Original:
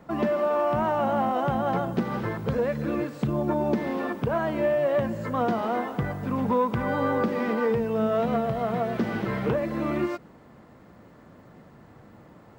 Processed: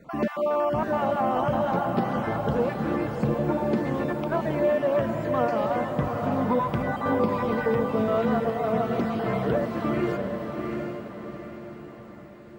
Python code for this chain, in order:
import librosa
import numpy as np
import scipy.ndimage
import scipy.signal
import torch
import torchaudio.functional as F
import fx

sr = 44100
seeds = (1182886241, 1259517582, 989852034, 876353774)

p1 = fx.spec_dropout(x, sr, seeds[0], share_pct=25)
y = p1 + fx.echo_diffused(p1, sr, ms=721, feedback_pct=45, wet_db=-4.0, dry=0)